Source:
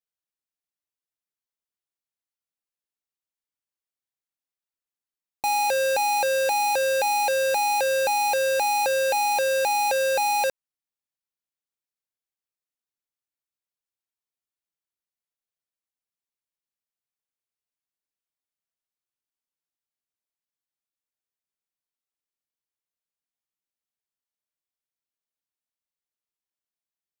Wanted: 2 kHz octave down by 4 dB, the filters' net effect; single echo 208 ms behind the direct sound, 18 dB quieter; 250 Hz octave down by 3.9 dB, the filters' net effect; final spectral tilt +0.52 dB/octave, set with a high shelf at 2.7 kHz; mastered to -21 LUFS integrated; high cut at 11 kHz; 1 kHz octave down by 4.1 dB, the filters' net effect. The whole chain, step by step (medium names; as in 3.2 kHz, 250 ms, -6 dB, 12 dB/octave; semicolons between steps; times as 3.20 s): low-pass 11 kHz; peaking EQ 250 Hz -4.5 dB; peaking EQ 1 kHz -4.5 dB; peaking EQ 2 kHz -8.5 dB; treble shelf 2.7 kHz +7.5 dB; delay 208 ms -18 dB; trim +2 dB